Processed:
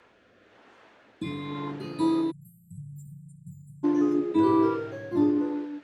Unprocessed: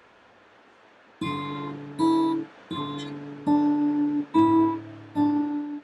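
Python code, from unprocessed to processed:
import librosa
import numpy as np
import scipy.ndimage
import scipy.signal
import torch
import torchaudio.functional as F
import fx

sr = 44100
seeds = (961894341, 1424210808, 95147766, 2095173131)

y = fx.rotary(x, sr, hz=1.0)
y = fx.echo_pitch(y, sr, ms=778, semitones=3, count=3, db_per_echo=-6.0)
y = fx.brickwall_bandstop(y, sr, low_hz=180.0, high_hz=7100.0, at=(2.3, 3.83), fade=0.02)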